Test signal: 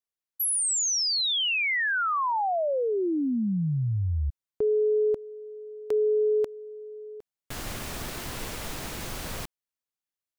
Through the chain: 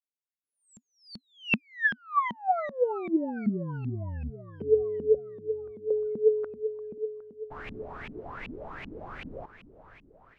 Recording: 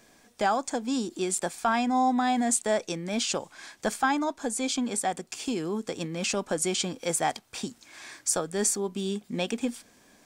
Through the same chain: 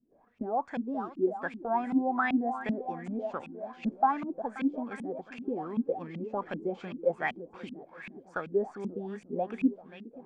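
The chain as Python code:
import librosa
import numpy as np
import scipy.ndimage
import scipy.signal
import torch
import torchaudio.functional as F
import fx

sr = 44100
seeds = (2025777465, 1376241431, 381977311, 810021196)

y = fx.gate_hold(x, sr, open_db=-47.0, close_db=-52.0, hold_ms=126.0, range_db=-10, attack_ms=11.0, release_ms=24.0)
y = fx.echo_swing(y, sr, ms=885, ratio=1.5, feedback_pct=32, wet_db=-13.0)
y = fx.filter_lfo_lowpass(y, sr, shape='saw_up', hz=2.6, low_hz=200.0, high_hz=2700.0, q=6.9)
y = y * librosa.db_to_amplitude(-9.0)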